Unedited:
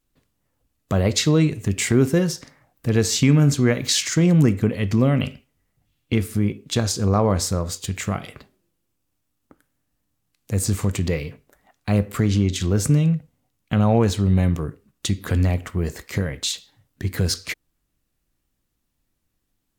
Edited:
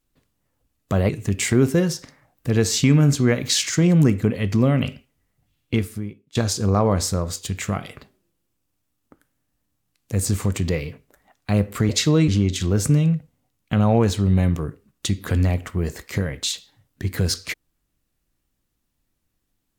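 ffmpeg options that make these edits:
-filter_complex "[0:a]asplit=5[a][b][c][d][e];[a]atrim=end=1.092[f];[b]atrim=start=1.478:end=6.74,asetpts=PTS-STARTPTS,afade=t=out:st=4.662:d=0.6:c=qua:silence=0.0891251[g];[c]atrim=start=6.74:end=12.282,asetpts=PTS-STARTPTS,afade=t=in:d=0.004:c=hsin:silence=0.0891251[h];[d]atrim=start=1.088:end=1.482[i];[e]atrim=start=12.278[j];[g][h]concat=n=2:v=0:a=1[k];[f][k]acrossfade=d=0.004:c1=hsin:c2=hsin[l];[l][i]acrossfade=d=0.004:c1=hsin:c2=hsin[m];[m][j]acrossfade=d=0.004:c1=hsin:c2=hsin"

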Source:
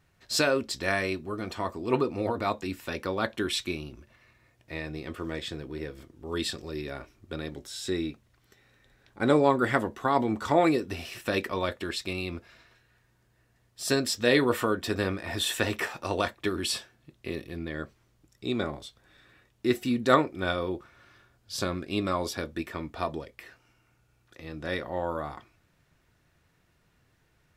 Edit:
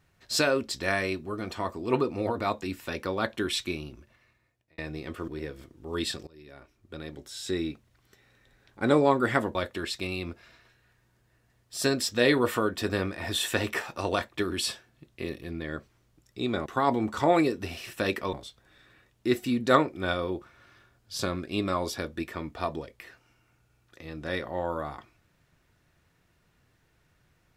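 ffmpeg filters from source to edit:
-filter_complex "[0:a]asplit=7[a][b][c][d][e][f][g];[a]atrim=end=4.78,asetpts=PTS-STARTPTS,afade=t=out:st=3.87:d=0.91[h];[b]atrim=start=4.78:end=5.282,asetpts=PTS-STARTPTS,afade=t=in:d=0.004:c=hsin[i];[c]atrim=start=5.668:end=6.66,asetpts=PTS-STARTPTS,afade=t=out:st=0.988:d=0.004:c=hsin:silence=0.0707946[j];[d]atrim=start=6.66:end=9.942,asetpts=PTS-STARTPTS,afade=t=in:d=1.27:silence=0.0707946[k];[e]atrim=start=11.608:end=18.722[l];[f]atrim=start=9.938:end=11.612[m];[g]atrim=start=18.718[n];[h][i]concat=n=2:v=0:a=1[o];[j][k]concat=n=2:v=0:a=1[p];[o][p]acrossfade=d=0.004:c1=hsin:c2=hsin[q];[q][l]acrossfade=d=0.004:c1=hsin:c2=hsin[r];[r][m]acrossfade=d=0.004:c1=hsin:c2=hsin[s];[s][n]acrossfade=d=0.004:c1=hsin:c2=hsin"

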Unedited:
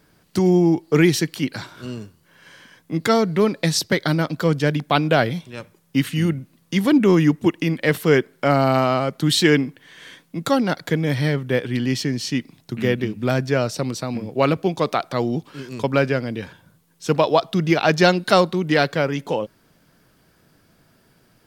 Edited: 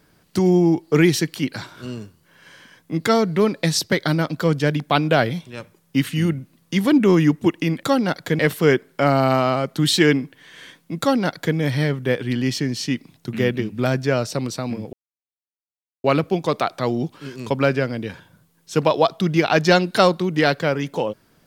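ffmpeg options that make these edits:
-filter_complex "[0:a]asplit=4[a][b][c][d];[a]atrim=end=7.832[e];[b]atrim=start=10.438:end=11.002[f];[c]atrim=start=7.828:end=14.37,asetpts=PTS-STARTPTS,afade=t=out:st=6.538:d=0.004:c=hsin,apad=pad_dur=1.11[g];[d]atrim=start=14.37,asetpts=PTS-STARTPTS,afade=t=in:d=0.004:c=hsin[h];[e][f]acrossfade=d=0.004:c1=hsin:c2=hsin[i];[g][h]concat=n=2:v=0:a=1[j];[i][j]acrossfade=d=0.004:c1=hsin:c2=hsin"

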